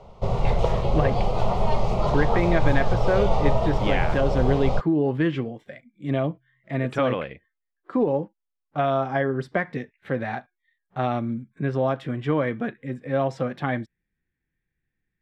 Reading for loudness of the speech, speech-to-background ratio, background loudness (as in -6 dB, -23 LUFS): -26.0 LUFS, -0.5 dB, -25.5 LUFS